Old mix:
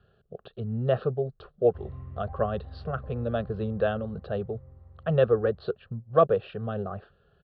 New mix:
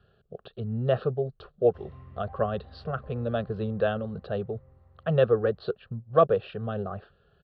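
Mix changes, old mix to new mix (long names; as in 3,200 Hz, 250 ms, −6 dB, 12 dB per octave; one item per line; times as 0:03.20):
background: add spectral tilt +2 dB per octave
master: add high-shelf EQ 4,100 Hz +5.5 dB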